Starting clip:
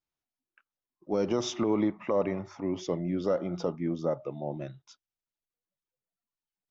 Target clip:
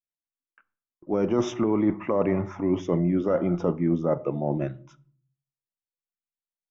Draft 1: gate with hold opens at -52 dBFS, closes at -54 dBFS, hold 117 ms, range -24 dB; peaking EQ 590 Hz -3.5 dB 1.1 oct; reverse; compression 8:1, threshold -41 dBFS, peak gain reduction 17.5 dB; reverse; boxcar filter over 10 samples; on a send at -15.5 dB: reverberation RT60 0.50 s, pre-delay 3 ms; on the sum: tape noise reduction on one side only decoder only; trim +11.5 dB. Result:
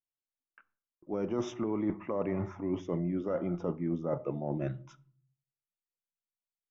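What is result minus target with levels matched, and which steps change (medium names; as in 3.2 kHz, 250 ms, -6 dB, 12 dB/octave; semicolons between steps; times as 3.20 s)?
compression: peak gain reduction +9 dB
change: compression 8:1, threshold -30.5 dBFS, peak gain reduction 8 dB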